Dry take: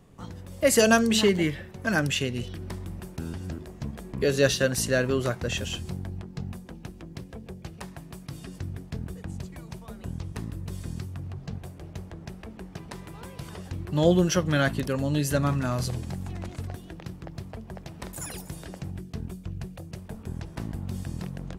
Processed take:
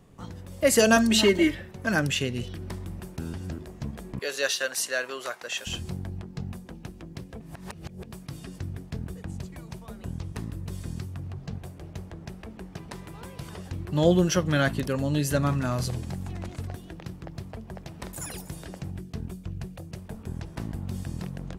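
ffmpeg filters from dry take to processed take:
-filter_complex "[0:a]asettb=1/sr,asplit=3[a][b][c];[a]atrim=end=0.964[d];[b]atrim=start=0.96:end=1.55,asetpts=PTS-STARTPTS,afade=t=in:d=0.004:c=qsin,afade=t=out:st=0.586:d=0.004:c=qsin,aecho=1:1:3.2:0.88,atrim=end_sample=26019[e];[c]atrim=start=1.546[f];[d][e]acrossfade=d=0.004:c1=hsin:c2=qsin[g];[g][f]acrossfade=d=0.004:c1=qsin:c2=hsin,asettb=1/sr,asplit=3[h][i][j];[h]atrim=end=4.194[k];[i]atrim=start=4.19:end=5.67,asetpts=PTS-STARTPTS,afade=t=in:d=0.004:c=qsin,afade=t=out:st=1.476:d=0.004:c=qsin,highpass=760[l];[j]atrim=start=5.666[m];[k][l]acrossfade=d=0.004:c1=hsin:c2=qsin[n];[n][m]acrossfade=d=0.004:c1=qsin:c2=hsin,asplit=3[o][p][q];[o]atrim=end=7.402[r];[p]atrim=start=7.398:end=8.122,asetpts=PTS-STARTPTS,areverse[s];[q]atrim=start=8.118[t];[r][s]acrossfade=d=0.004:c1=hsin:c2=hsin[u];[u][t]acrossfade=d=0.004:c1=hsin:c2=hsin"

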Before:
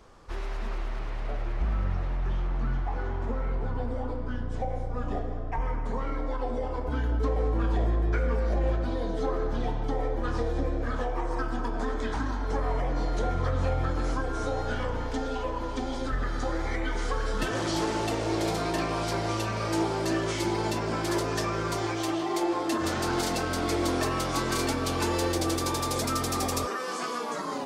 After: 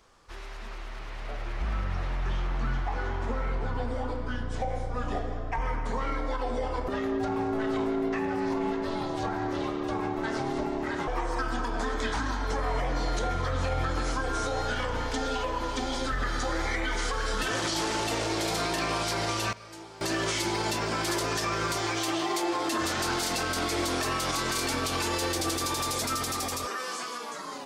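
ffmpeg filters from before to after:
-filter_complex "[0:a]asettb=1/sr,asplit=3[a][b][c];[a]atrim=end=6.884[d];[b]atrim=start=6.88:end=11.08,asetpts=PTS-STARTPTS,afade=t=in:d=0.004:c=qsin,afade=t=out:st=4.196:d=0.004:c=qsin,aeval=exprs='val(0)*sin(2*PI*330*n/s)':c=same[e];[c]atrim=start=11.076[f];[d][e]acrossfade=d=0.004:c1=hsin:c2=qsin[g];[g][f]acrossfade=d=0.004:c1=qsin:c2=hsin,asplit=3[h][i][j];[h]atrim=end=19.53,asetpts=PTS-STARTPTS,afade=t=out:st=19.35:d=0.18:c=log:silence=0.105925[k];[i]atrim=start=19.53:end=20.01,asetpts=PTS-STARTPTS,volume=-19.5dB[l];[j]atrim=start=20.01,asetpts=PTS-STARTPTS,afade=t=in:d=0.18:c=log:silence=0.105925[m];[k][l][m]concat=n=3:v=0:a=1,tiltshelf=f=1.1k:g=-5,alimiter=limit=-24dB:level=0:latency=1:release=59,dynaudnorm=f=260:g=11:m=8.5dB,volume=-4.5dB"

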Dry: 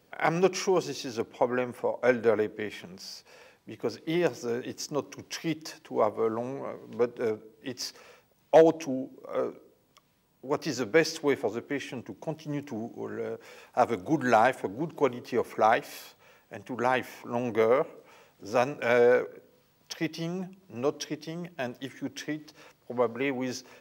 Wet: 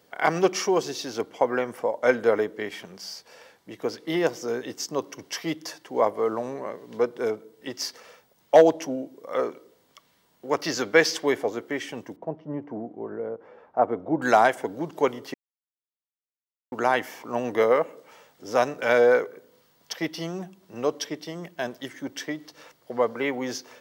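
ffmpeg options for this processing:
-filter_complex "[0:a]asettb=1/sr,asplit=3[a][b][c];[a]atrim=end=9.324[d];[b]atrim=start=9.32:end=11.26,asetpts=PTS-STARTPTS,afade=t=in:d=0.004:c=qsin,afade=t=out:st=1.936:d=0.004:c=qsin,equalizer=f=2.5k:t=o:w=2.7:g=4[e];[c]atrim=start=11.256[f];[d][e]acrossfade=d=0.004:c1=hsin:c2=qsin[g];[g][f]acrossfade=d=0.004:c1=qsin:c2=hsin,asettb=1/sr,asplit=3[h][i][j];[h]atrim=end=12.164[k];[i]atrim=start=12.16:end=14.22,asetpts=PTS-STARTPTS,afade=t=in:d=0.004:c=qsin,afade=t=out:st=2.056:d=0.004:c=qsin,lowpass=1k[l];[j]atrim=start=14.216[m];[k][l]acrossfade=d=0.004:c1=hsin:c2=qsin[n];[n][m]acrossfade=d=0.004:c1=qsin:c2=hsin,asplit=3[o][p][q];[o]atrim=end=15.34,asetpts=PTS-STARTPTS,afade=t=out:st=15.336:d=0.004:c=hsin[r];[p]atrim=start=15.34:end=16.72,asetpts=PTS-STARTPTS,volume=0[s];[q]atrim=start=16.72,asetpts=PTS-STARTPTS,afade=t=in:d=0.004:c=hsin[t];[r][s][t]concat=n=3:v=0:a=1,lowshelf=f=190:g=-10,bandreject=f=2.5k:w=9.5,volume=4.5dB"

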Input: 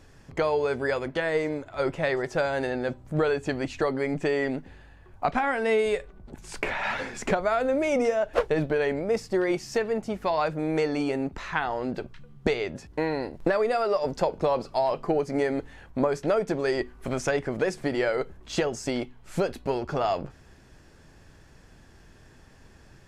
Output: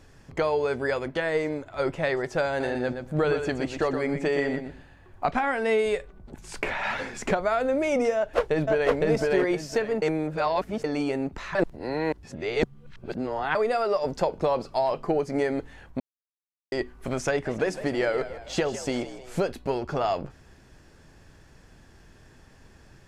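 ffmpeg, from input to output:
-filter_complex "[0:a]asettb=1/sr,asplit=3[a][b][c];[a]atrim=end=2.484[d];[b]atrim=start=2.48:end=5.34,asetpts=PTS-STARTPTS,afade=t=in:d=0.004:c=qsin,afade=t=out:st=2.856:d=0.004:c=qsin,aecho=1:1:120|240:0.422|0.0633,atrim=end_sample=126126[e];[c]atrim=start=5.336[f];[d][e]acrossfade=d=0.004:c1=hsin:c2=qsin[g];[g][f]acrossfade=d=0.004:c1=qsin:c2=hsin,asplit=2[h][i];[i]afade=t=in:st=8.16:d=0.01,afade=t=out:st=8.93:d=0.01,aecho=0:1:510|1020|1530|2040:0.944061|0.236015|0.0590038|0.014751[j];[h][j]amix=inputs=2:normalize=0,asplit=3[k][l][m];[k]afade=t=out:st=17.45:d=0.02[n];[l]asplit=6[o][p][q][r][s][t];[p]adelay=157,afreqshift=64,volume=-13dB[u];[q]adelay=314,afreqshift=128,volume=-19.6dB[v];[r]adelay=471,afreqshift=192,volume=-26.1dB[w];[s]adelay=628,afreqshift=256,volume=-32.7dB[x];[t]adelay=785,afreqshift=320,volume=-39.2dB[y];[o][u][v][w][x][y]amix=inputs=6:normalize=0,afade=t=in:st=17.45:d=0.02,afade=t=out:st=19.44:d=0.02[z];[m]afade=t=in:st=19.44:d=0.02[aa];[n][z][aa]amix=inputs=3:normalize=0,asplit=7[ab][ac][ad][ae][af][ag][ah];[ab]atrim=end=10.022[ai];[ac]atrim=start=10.018:end=10.842,asetpts=PTS-STARTPTS,areverse[aj];[ad]atrim=start=10.838:end=11.552[ak];[ae]atrim=start=11.548:end=13.552,asetpts=PTS-STARTPTS,areverse[al];[af]atrim=start=13.548:end=16,asetpts=PTS-STARTPTS,afade=t=out:st=2.448:d=0.004:c=hsin[am];[ag]atrim=start=16:end=16.72,asetpts=PTS-STARTPTS,volume=0[an];[ah]atrim=start=16.72,asetpts=PTS-STARTPTS,afade=t=in:d=0.004:c=hsin[ao];[ai][aj]acrossfade=d=0.004:c1=hsin:c2=hsin[ap];[ap][ak]acrossfade=d=0.004:c1=hsin:c2=hsin[aq];[aq][al]acrossfade=d=0.004:c1=hsin:c2=hsin[ar];[am][an][ao]concat=n=3:v=0:a=1[as];[ar][as]acrossfade=d=0.004:c1=hsin:c2=hsin"

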